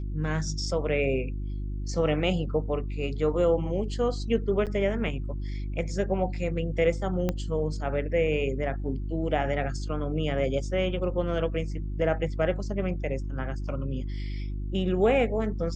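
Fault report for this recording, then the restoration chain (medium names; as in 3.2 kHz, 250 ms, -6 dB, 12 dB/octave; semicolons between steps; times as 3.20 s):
hum 50 Hz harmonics 7 -32 dBFS
4.66–4.67 s: dropout 7.8 ms
7.29 s: pop -14 dBFS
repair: de-click; de-hum 50 Hz, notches 7; interpolate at 4.66 s, 7.8 ms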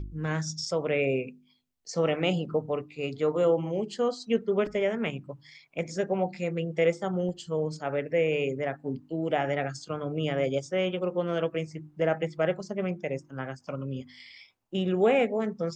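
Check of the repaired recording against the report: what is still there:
7.29 s: pop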